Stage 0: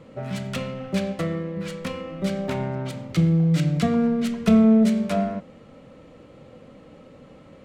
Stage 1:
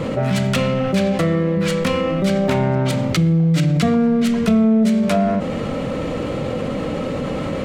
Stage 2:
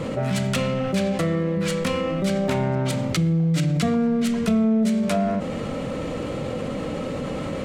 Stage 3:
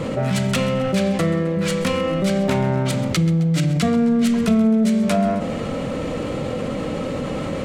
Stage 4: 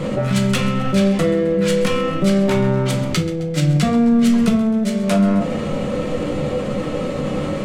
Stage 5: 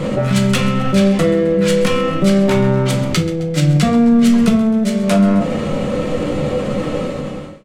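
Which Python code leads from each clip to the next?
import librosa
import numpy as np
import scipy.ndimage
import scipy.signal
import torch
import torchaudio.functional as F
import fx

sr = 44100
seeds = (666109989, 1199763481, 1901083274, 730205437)

y1 = fx.env_flatten(x, sr, amount_pct=70)
y2 = fx.peak_eq(y1, sr, hz=8800.0, db=4.5, octaves=1.3)
y2 = F.gain(torch.from_numpy(y2), -5.0).numpy()
y3 = fx.echo_feedback(y2, sr, ms=132, feedback_pct=54, wet_db=-16.5)
y3 = F.gain(torch.from_numpy(y3), 3.0).numpy()
y4 = fx.room_shoebox(y3, sr, seeds[0], volume_m3=140.0, walls='furnished', distance_m=0.99)
y5 = fx.fade_out_tail(y4, sr, length_s=0.68)
y5 = F.gain(torch.from_numpy(y5), 3.0).numpy()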